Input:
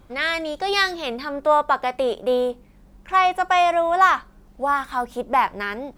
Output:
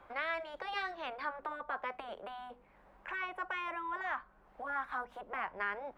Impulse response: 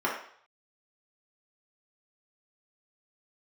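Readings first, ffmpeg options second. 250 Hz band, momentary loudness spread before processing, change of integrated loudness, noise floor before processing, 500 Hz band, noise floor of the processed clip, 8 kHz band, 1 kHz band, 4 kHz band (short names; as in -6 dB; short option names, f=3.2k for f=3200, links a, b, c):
-21.5 dB, 10 LU, -18.5 dB, -51 dBFS, -22.5 dB, -64 dBFS, n/a, -19.5 dB, -21.0 dB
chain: -filter_complex "[0:a]acrossover=split=260[a][b];[b]acompressor=threshold=-40dB:ratio=2[c];[a][c]amix=inputs=2:normalize=0,afftfilt=real='re*lt(hypot(re,im),0.141)':imag='im*lt(hypot(re,im),0.141)':win_size=1024:overlap=0.75,acrossover=split=550 2300:gain=0.0794 1 0.0708[d][e][f];[d][e][f]amix=inputs=3:normalize=0,volume=3.5dB"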